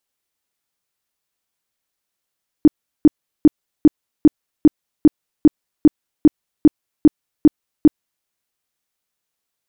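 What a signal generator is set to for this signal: tone bursts 303 Hz, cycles 8, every 0.40 s, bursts 14, -3.5 dBFS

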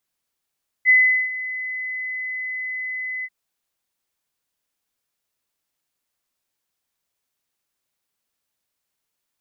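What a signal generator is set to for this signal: ADSR sine 2.02 kHz, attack 44 ms, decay 400 ms, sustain -16 dB, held 2.39 s, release 48 ms -9.5 dBFS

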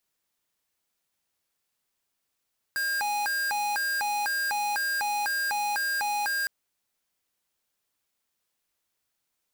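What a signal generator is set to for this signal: siren hi-lo 828–1610 Hz 2 per s square -28 dBFS 3.71 s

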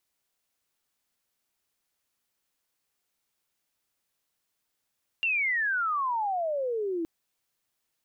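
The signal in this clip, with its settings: sweep logarithmic 2.8 kHz -> 320 Hz -23.5 dBFS -> -27.5 dBFS 1.82 s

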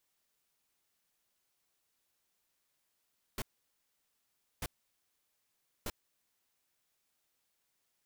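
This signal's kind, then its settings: noise bursts pink, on 0.04 s, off 1.20 s, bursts 3, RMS -37.5 dBFS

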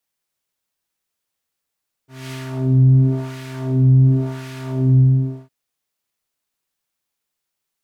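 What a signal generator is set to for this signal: synth patch with filter wobble C3, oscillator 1 triangle, oscillator 2 sine, interval +12 st, oscillator 2 level -13 dB, sub -29 dB, noise -22 dB, filter bandpass, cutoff 310 Hz, Q 1, filter envelope 2 oct, attack 227 ms, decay 0.19 s, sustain -3.5 dB, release 0.50 s, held 2.91 s, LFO 0.93 Hz, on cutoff 2 oct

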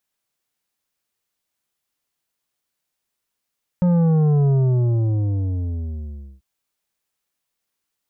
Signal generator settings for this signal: sub drop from 180 Hz, over 2.59 s, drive 9 dB, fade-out 1.94 s, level -14.5 dB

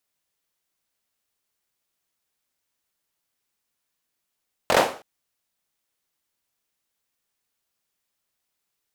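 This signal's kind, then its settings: hand clap length 0.32 s, apart 22 ms, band 580 Hz, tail 0.40 s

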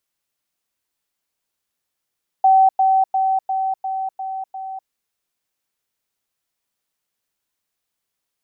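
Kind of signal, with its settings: level ladder 766 Hz -9 dBFS, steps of -3 dB, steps 7, 0.25 s 0.10 s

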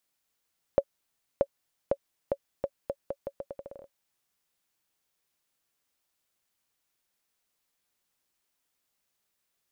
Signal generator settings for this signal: bouncing ball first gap 0.63 s, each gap 0.8, 557 Hz, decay 57 ms -10 dBFS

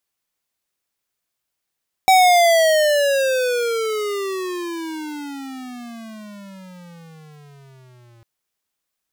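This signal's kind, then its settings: gliding synth tone square, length 6.15 s, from 766 Hz, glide -33 st, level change -38 dB, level -11 dB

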